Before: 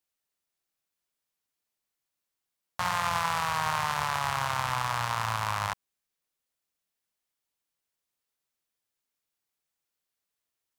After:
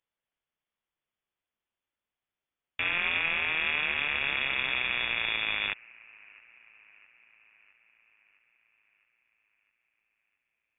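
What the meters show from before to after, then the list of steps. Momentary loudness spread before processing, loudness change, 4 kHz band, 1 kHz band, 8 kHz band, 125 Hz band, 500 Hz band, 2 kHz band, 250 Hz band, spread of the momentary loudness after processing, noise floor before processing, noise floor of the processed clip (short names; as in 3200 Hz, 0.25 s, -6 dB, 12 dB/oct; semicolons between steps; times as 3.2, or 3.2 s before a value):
5 LU, +1.5 dB, +4.5 dB, -12.5 dB, under -40 dB, -14.5 dB, -3.5 dB, +6.0 dB, -2.5 dB, 5 LU, under -85 dBFS, under -85 dBFS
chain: band-limited delay 0.662 s, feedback 61%, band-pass 1200 Hz, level -24 dB; inverted band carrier 3500 Hz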